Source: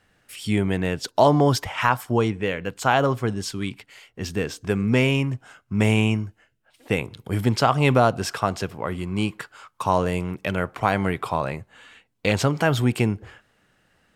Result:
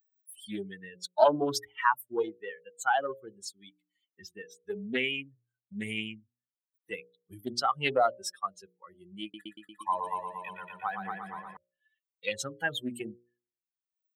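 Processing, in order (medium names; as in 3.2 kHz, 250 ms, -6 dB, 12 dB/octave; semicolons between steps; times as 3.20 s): expander on every frequency bin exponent 3; high-pass 380 Hz 12 dB/octave; hum notches 60/120/180/240/300/360/420/480/540/600 Hz; upward compressor, threshold -43 dBFS; 9.22–11.57 s: multi-head delay 117 ms, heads first and second, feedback 57%, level -7 dB; loudspeaker Doppler distortion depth 0.13 ms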